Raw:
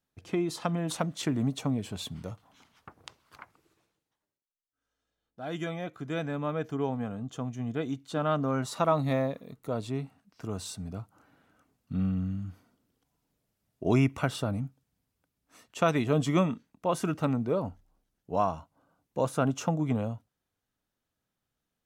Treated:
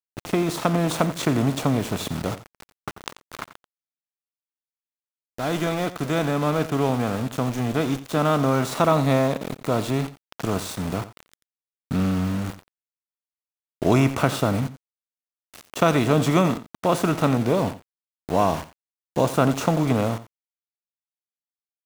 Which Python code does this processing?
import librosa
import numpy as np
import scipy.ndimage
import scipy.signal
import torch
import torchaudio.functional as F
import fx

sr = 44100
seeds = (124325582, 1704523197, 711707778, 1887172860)

p1 = fx.bin_compress(x, sr, power=0.6)
p2 = fx.notch(p1, sr, hz=1300.0, q=5.2, at=(17.33, 19.34))
p3 = np.where(np.abs(p2) >= 10.0 ** (-34.0 / 20.0), p2, 0.0)
p4 = p3 + fx.echo_single(p3, sr, ms=88, db=-15.0, dry=0)
y = F.gain(torch.from_numpy(p4), 4.0).numpy()